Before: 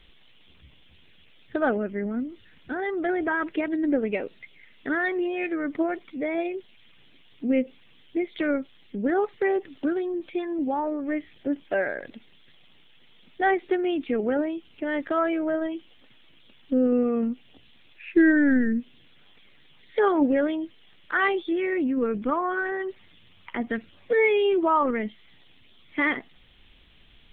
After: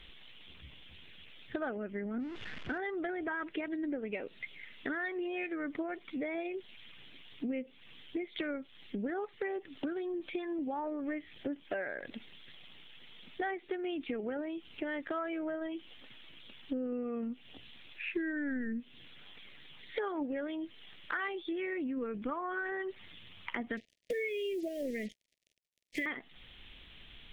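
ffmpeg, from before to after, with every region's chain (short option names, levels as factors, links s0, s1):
-filter_complex "[0:a]asettb=1/sr,asplit=3[s0][s1][s2];[s0]atrim=end=2.184[s3];[s1]atrim=start=2.18:end=2.78,asetpts=PTS-STARTPTS,afade=t=in:d=0.004:c=qsin,afade=t=out:st=0.596:d=0.004:c=qsin,aeval=exprs='val(0)+0.5*0.0106*sgn(val(0))':c=same,lowpass=2400,adynamicequalizer=threshold=0.00447:dfrequency=1500:dqfactor=0.7:tfrequency=1500:tqfactor=0.7:attack=5:release=100:ratio=0.375:range=2:mode=boostabove:tftype=highshelf[s4];[s2]atrim=start=2.776[s5];[s3][s4]acrossfade=d=0.004:c1=hsin:c2=qsin[s6];[s6][s5]acrossfade=d=0.004:c1=qsin:c2=hsin,asettb=1/sr,asplit=3[s7][s8][s9];[s7]atrim=end=23.774[s10];[s8]atrim=start=23.77:end=26.06,asetpts=PTS-STARTPTS,afade=t=in:d=0.004:c=qsin,afade=t=out:st=2.286:d=0.004:c=qsin,acrusher=bits=6:mix=0:aa=0.5,asuperstop=centerf=1100:order=12:qfactor=0.98[s11];[s9]atrim=start=26.056[s12];[s10][s11]acrossfade=d=0.004:c1=hsin:c2=qsin[s13];[s13][s12]acrossfade=d=0.004:c1=qsin:c2=hsin,equalizer=f=2900:t=o:w=2.6:g=4,acompressor=threshold=0.0178:ratio=6"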